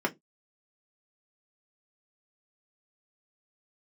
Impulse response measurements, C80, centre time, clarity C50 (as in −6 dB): 34.5 dB, 7 ms, 25.0 dB